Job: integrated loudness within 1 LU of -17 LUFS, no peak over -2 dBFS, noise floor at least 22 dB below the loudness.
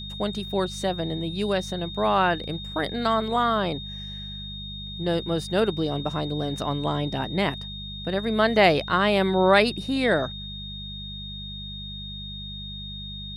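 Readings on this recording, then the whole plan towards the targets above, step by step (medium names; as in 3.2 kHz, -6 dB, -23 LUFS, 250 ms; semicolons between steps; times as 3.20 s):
hum 50 Hz; highest harmonic 200 Hz; hum level -36 dBFS; steady tone 3.7 kHz; tone level -36 dBFS; loudness -25.5 LUFS; peak level -5.5 dBFS; loudness target -17.0 LUFS
-> de-hum 50 Hz, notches 4; band-stop 3.7 kHz, Q 30; trim +8.5 dB; peak limiter -2 dBFS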